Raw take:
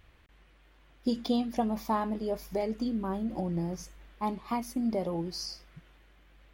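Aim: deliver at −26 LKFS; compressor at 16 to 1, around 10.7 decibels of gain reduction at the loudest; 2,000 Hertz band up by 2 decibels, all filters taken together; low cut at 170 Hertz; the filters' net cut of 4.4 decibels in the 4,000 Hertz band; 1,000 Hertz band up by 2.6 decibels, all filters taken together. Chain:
high-pass filter 170 Hz
parametric band 1,000 Hz +3 dB
parametric band 2,000 Hz +3 dB
parametric band 4,000 Hz −6.5 dB
downward compressor 16 to 1, threshold −33 dBFS
level +13.5 dB

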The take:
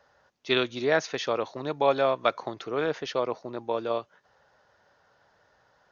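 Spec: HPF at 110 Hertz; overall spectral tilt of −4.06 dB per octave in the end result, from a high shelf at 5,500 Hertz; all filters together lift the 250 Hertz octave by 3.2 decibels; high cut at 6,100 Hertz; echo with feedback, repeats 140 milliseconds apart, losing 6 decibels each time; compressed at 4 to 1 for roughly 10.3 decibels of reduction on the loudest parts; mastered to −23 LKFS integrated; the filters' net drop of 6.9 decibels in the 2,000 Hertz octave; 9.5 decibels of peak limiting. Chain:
high-pass filter 110 Hz
low-pass filter 6,100 Hz
parametric band 250 Hz +4.5 dB
parametric band 2,000 Hz −8.5 dB
high-shelf EQ 5,500 Hz −6.5 dB
downward compressor 4 to 1, threshold −31 dBFS
brickwall limiter −28.5 dBFS
repeating echo 140 ms, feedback 50%, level −6 dB
level +15.5 dB

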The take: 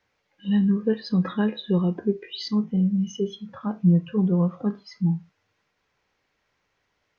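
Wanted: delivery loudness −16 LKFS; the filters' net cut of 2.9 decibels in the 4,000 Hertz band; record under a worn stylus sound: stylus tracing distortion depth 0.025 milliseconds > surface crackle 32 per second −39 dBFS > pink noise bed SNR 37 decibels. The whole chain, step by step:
parametric band 4,000 Hz −3.5 dB
stylus tracing distortion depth 0.025 ms
surface crackle 32 per second −39 dBFS
pink noise bed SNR 37 dB
level +8.5 dB

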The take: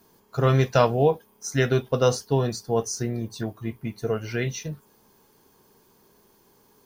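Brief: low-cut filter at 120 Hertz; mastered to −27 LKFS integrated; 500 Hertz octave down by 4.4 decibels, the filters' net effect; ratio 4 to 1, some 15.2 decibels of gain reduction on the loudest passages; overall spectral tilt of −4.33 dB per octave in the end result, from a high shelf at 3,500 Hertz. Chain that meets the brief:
high-pass filter 120 Hz
parametric band 500 Hz −5.5 dB
high-shelf EQ 3,500 Hz +8.5 dB
downward compressor 4 to 1, threshold −36 dBFS
level +11.5 dB

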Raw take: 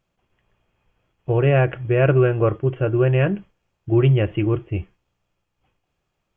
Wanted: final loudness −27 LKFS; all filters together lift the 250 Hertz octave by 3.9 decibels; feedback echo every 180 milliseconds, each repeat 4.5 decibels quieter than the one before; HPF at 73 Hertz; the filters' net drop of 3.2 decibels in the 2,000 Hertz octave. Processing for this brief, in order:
high-pass filter 73 Hz
parametric band 250 Hz +7.5 dB
parametric band 2,000 Hz −4.5 dB
repeating echo 180 ms, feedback 60%, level −4.5 dB
level −10.5 dB

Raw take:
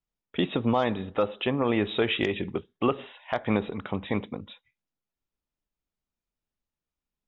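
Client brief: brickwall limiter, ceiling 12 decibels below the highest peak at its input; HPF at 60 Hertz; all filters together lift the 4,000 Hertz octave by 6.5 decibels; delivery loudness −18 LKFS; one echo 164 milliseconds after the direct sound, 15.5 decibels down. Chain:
high-pass filter 60 Hz
parametric band 4,000 Hz +8.5 dB
brickwall limiter −20 dBFS
single-tap delay 164 ms −15.5 dB
level +14 dB

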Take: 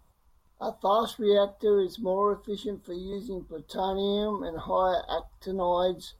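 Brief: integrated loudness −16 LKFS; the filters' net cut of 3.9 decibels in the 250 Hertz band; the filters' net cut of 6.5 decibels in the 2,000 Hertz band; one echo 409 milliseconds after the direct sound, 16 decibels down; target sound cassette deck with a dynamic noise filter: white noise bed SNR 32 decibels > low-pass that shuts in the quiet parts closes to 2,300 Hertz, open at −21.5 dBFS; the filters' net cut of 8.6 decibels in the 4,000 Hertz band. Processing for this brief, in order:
parametric band 250 Hz −6 dB
parametric band 2,000 Hz −8 dB
parametric band 4,000 Hz −7.5 dB
single-tap delay 409 ms −16 dB
white noise bed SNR 32 dB
low-pass that shuts in the quiet parts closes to 2,300 Hz, open at −21.5 dBFS
level +14.5 dB

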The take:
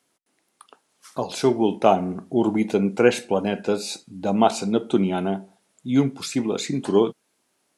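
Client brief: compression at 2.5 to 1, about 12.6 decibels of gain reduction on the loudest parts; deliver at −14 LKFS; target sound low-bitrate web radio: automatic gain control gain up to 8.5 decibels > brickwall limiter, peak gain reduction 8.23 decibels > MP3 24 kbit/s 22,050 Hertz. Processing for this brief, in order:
downward compressor 2.5 to 1, threshold −31 dBFS
automatic gain control gain up to 8.5 dB
brickwall limiter −23 dBFS
level +21 dB
MP3 24 kbit/s 22,050 Hz

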